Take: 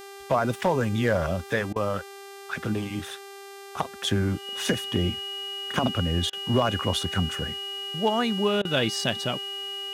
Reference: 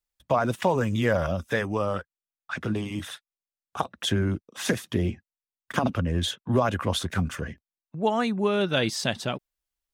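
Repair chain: clip repair -13.5 dBFS; de-hum 396.2 Hz, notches 36; band-stop 2.9 kHz, Q 30; interpolate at 1.73/6.30/8.62 s, 28 ms

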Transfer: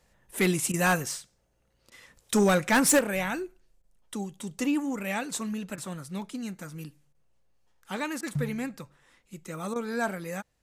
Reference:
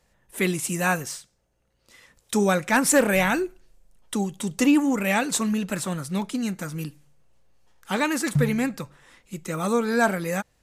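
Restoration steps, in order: clip repair -16 dBFS; interpolate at 0.72/1.90/3.82/5.76/7.13/8.21/9.74 s, 16 ms; gain correction +8.5 dB, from 2.99 s

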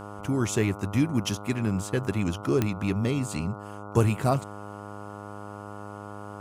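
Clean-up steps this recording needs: de-click; de-hum 102.5 Hz, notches 14

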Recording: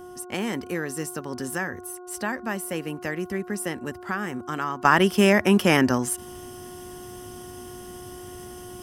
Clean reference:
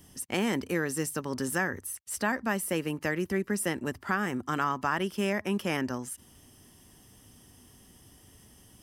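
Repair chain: de-hum 360.7 Hz, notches 4; trim 0 dB, from 4.85 s -11.5 dB

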